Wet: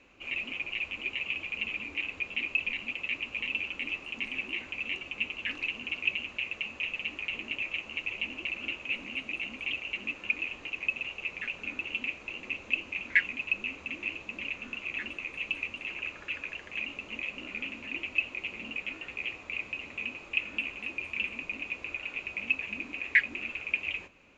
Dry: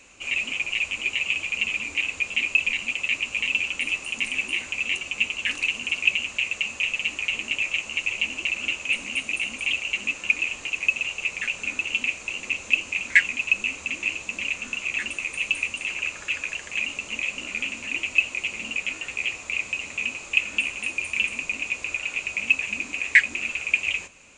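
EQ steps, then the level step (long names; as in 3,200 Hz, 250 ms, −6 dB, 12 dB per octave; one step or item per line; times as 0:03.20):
high-frequency loss of the air 240 metres
parametric band 320 Hz +4 dB 1 octave
−5.0 dB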